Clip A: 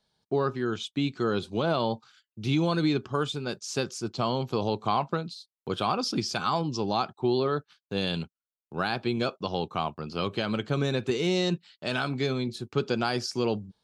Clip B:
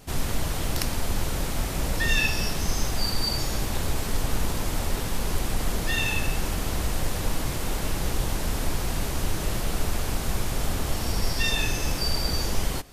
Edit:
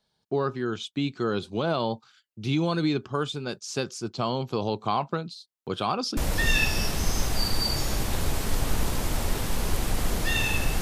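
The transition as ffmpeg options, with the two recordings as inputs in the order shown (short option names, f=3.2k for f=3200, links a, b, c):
-filter_complex "[0:a]apad=whole_dur=10.81,atrim=end=10.81,atrim=end=6.172[a];[1:a]atrim=start=1.788:end=6.43[b];[a][b]acrossfade=d=0.004:c1=hsin:c2=hsin"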